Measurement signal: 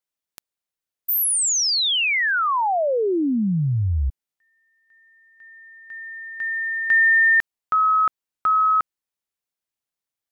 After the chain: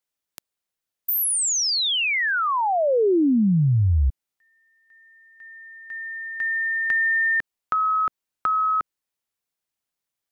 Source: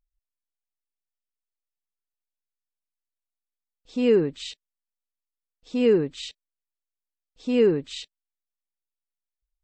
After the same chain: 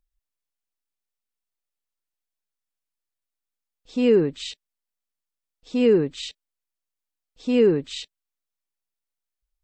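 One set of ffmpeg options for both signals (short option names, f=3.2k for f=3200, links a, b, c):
-filter_complex "[0:a]acrossover=split=460[a][b];[b]acompressor=threshold=-25dB:ratio=3:attack=8.9:release=165:knee=2.83:detection=peak[c];[a][c]amix=inputs=2:normalize=0,volume=2.5dB"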